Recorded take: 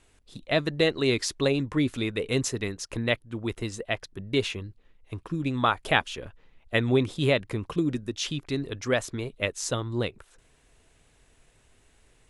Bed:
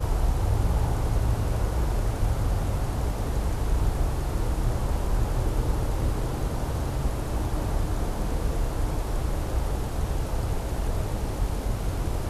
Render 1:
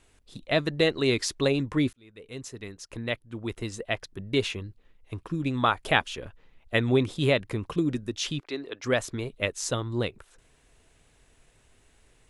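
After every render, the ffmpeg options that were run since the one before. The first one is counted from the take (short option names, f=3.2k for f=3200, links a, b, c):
-filter_complex "[0:a]asettb=1/sr,asplit=3[a][b][c];[a]atrim=end=8.404[d];[b]atrim=start=8.4:end=8.84,asetpts=PTS-STARTPTS,afade=t=in:d=0.004:c=qsin,afade=t=out:st=0.436:d=0.004:c=qsin,acrossover=split=290 5300:gain=0.0631 1 0.178[e][f][g];[e][f][g]amix=inputs=3:normalize=0[h];[c]atrim=start=8.836[i];[d][h]acrossfade=d=0.004:c1=hsin:c2=qsin[j];[j][i]acrossfade=d=0.004:c1=qsin:c2=hsin,asplit=2[k][l];[k]atrim=end=1.93,asetpts=PTS-STARTPTS,afade=t=out:st=1.926:d=0.004:c=hsin[m];[l]atrim=start=1.93,asetpts=PTS-STARTPTS,afade=t=in:d=2.03[n];[m][n]concat=n=2:v=0:a=1"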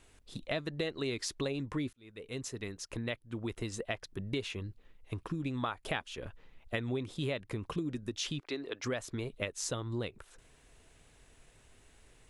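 -af "acompressor=threshold=-34dB:ratio=4"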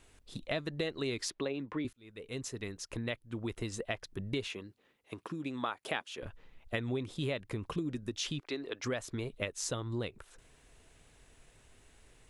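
-filter_complex "[0:a]asettb=1/sr,asplit=3[a][b][c];[a]atrim=end=1.304[d];[b]atrim=start=1.3:end=1.85,asetpts=PTS-STARTPTS,afade=t=in:d=0.004:c=qsin,afade=t=out:st=0.546:d=0.004:c=qsin,acrossover=split=170 3900:gain=0.158 1 0.1[e][f][g];[e][f][g]amix=inputs=3:normalize=0[h];[c]atrim=start=1.846[i];[d][h]acrossfade=d=0.004:c1=hsin:c2=qsin[j];[j][i]acrossfade=d=0.004:c1=qsin:c2=hsin,asettb=1/sr,asplit=3[k][l][m];[k]atrim=end=4.474[n];[l]atrim=start=4.47:end=6.22,asetpts=PTS-STARTPTS,afade=t=in:d=0.004:c=qsin,afade=t=out:st=1.746:d=0.004:c=qsin,highpass=220[o];[m]atrim=start=6.216[p];[n][o]acrossfade=d=0.004:c1=hsin:c2=qsin[q];[q][p]acrossfade=d=0.004:c1=qsin:c2=hsin"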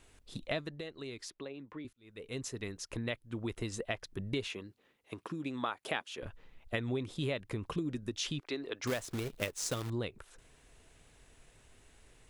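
-filter_complex "[0:a]asettb=1/sr,asplit=3[a][b][c];[a]atrim=end=8.874[d];[b]atrim=start=8.87:end=9.9,asetpts=PTS-STARTPTS,afade=t=in:d=0.004:c=qsin,afade=t=out:st=1.026:d=0.004:c=qsin,acrusher=bits=2:mode=log:mix=0:aa=0.000001[e];[c]atrim=start=9.896[f];[d][e]acrossfade=d=0.004:c1=hsin:c2=qsin[g];[g][f]acrossfade=d=0.004:c1=qsin:c2=hsin,asplit=3[h][i][j];[h]atrim=end=0.8,asetpts=PTS-STARTPTS,afade=t=out:st=0.52:d=0.28:silence=0.375837[k];[i]atrim=start=0.8:end=1.93,asetpts=PTS-STARTPTS,volume=-8.5dB[l];[j]atrim=start=1.93,asetpts=PTS-STARTPTS,afade=t=in:d=0.28:silence=0.375837[m];[k][l][m]concat=n=3:v=0:a=1"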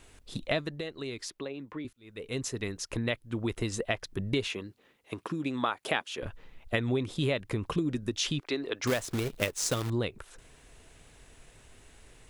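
-af "volume=6dB"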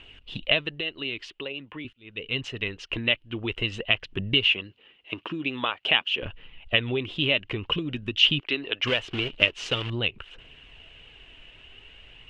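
-af "aphaser=in_gain=1:out_gain=1:delay=3.5:decay=0.27:speed=0.48:type=triangular,lowpass=f=2.9k:t=q:w=10"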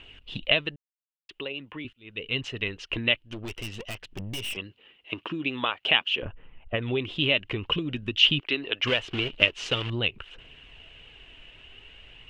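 -filter_complex "[0:a]asettb=1/sr,asplit=3[a][b][c];[a]atrim=end=3.214[d];[b]atrim=start=3.21:end=4.57,asetpts=PTS-STARTPTS,afade=t=in:d=0.004:c=qsin,afade=t=out:st=1.356:d=0.004:c=qsin,aeval=exprs='(tanh(39.8*val(0)+0.6)-tanh(0.6))/39.8':c=same[e];[c]atrim=start=4.566[f];[d][e]acrossfade=d=0.004:c1=hsin:c2=qsin[g];[g][f]acrossfade=d=0.004:c1=qsin:c2=hsin,asettb=1/sr,asplit=3[h][i][j];[h]atrim=end=6.224[k];[i]atrim=start=6.22:end=6.82,asetpts=PTS-STARTPTS,afade=t=in:d=0.004:c=qsin,afade=t=out:st=0.596:d=0.004:c=qsin,lowpass=1.4k[l];[j]atrim=start=6.816[m];[k][l]acrossfade=d=0.004:c1=hsin:c2=qsin[n];[n][m]acrossfade=d=0.004:c1=qsin:c2=hsin,asplit=3[o][p][q];[o]atrim=end=0.76,asetpts=PTS-STARTPTS,afade=t=out:st=0.756:d=0.004:c=hsin[r];[p]atrim=start=0.76:end=1.29,asetpts=PTS-STARTPTS,volume=0[s];[q]atrim=start=1.29,asetpts=PTS-STARTPTS,afade=t=in:d=0.004:c=hsin[t];[r][s][t]concat=n=3:v=0:a=1"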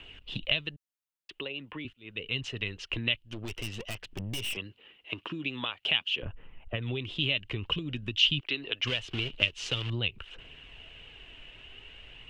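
-filter_complex "[0:a]acrossover=split=160|3000[a][b][c];[b]acompressor=threshold=-38dB:ratio=3[d];[a][d][c]amix=inputs=3:normalize=0"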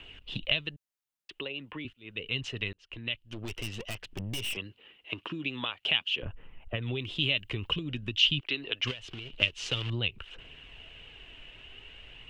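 -filter_complex "[0:a]asettb=1/sr,asplit=3[a][b][c];[a]atrim=end=6.984[d];[b]atrim=start=6.98:end=7.72,asetpts=PTS-STARTPTS,afade=t=in:d=0.004:c=qsin,afade=t=out:st=0.736:d=0.004:c=qsin,highshelf=f=8.6k:g=10[e];[c]atrim=start=7.716[f];[d][e]acrossfade=d=0.004:c1=hsin:c2=qsin[g];[g][f]acrossfade=d=0.004:c1=qsin:c2=hsin,asettb=1/sr,asplit=3[h][i][j];[h]atrim=end=8.914[k];[i]atrim=start=8.91:end=9.36,asetpts=PTS-STARTPTS,afade=t=in:d=0.004:c=qsin,afade=t=out:st=0.446:d=0.004:c=qsin,acompressor=threshold=-39dB:ratio=4:attack=3.2:release=140:knee=1:detection=peak[l];[j]atrim=start=9.356[m];[k][l]acrossfade=d=0.004:c1=hsin:c2=qsin[n];[n][m]acrossfade=d=0.004:c1=qsin:c2=hsin,asplit=2[o][p];[o]atrim=end=2.73,asetpts=PTS-STARTPTS,afade=t=out:st=2.726:d=0.004:c=hsin[q];[p]atrim=start=2.73,asetpts=PTS-STARTPTS,afade=t=in:d=0.69[r];[q][r]concat=n=2:v=0:a=1"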